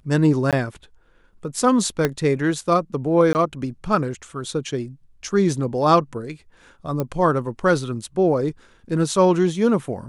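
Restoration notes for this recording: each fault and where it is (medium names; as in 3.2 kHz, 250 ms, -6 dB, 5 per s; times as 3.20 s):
0.51–0.53 s: dropout 17 ms
2.05 s: pop -6 dBFS
3.33–3.35 s: dropout 19 ms
7.00 s: pop -12 dBFS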